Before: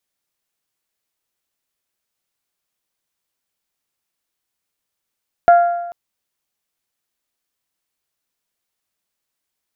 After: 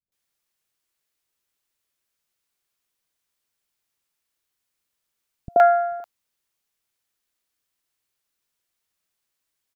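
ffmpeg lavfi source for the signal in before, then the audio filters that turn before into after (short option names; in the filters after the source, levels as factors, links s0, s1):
-f lavfi -i "aevalsrc='0.631*pow(10,-3*t/1.06)*sin(2*PI*694*t)+0.158*pow(10,-3*t/0.861)*sin(2*PI*1388*t)+0.0398*pow(10,-3*t/0.815)*sin(2*PI*1665.6*t)+0.01*pow(10,-3*t/0.762)*sin(2*PI*2082*t)':d=0.44:s=44100"
-filter_complex "[0:a]acrossover=split=210|690[s0][s1][s2];[s1]adelay=80[s3];[s2]adelay=120[s4];[s0][s3][s4]amix=inputs=3:normalize=0"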